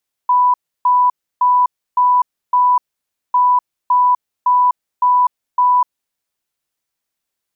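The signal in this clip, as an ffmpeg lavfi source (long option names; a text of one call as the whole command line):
ffmpeg -f lavfi -i "aevalsrc='0.355*sin(2*PI*991*t)*clip(min(mod(mod(t,3.05),0.56),0.25-mod(mod(t,3.05),0.56))/0.005,0,1)*lt(mod(t,3.05),2.8)':duration=6.1:sample_rate=44100" out.wav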